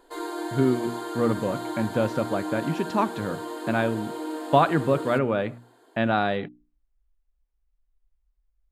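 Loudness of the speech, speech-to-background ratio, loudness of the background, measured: -26.0 LUFS, 8.0 dB, -34.0 LUFS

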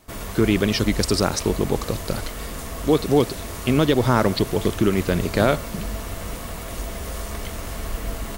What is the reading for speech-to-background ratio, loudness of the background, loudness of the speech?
10.5 dB, -32.0 LUFS, -21.5 LUFS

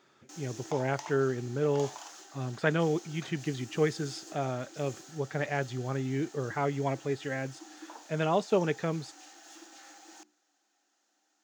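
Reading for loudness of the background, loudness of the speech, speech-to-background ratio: -48.5 LUFS, -32.0 LUFS, 16.5 dB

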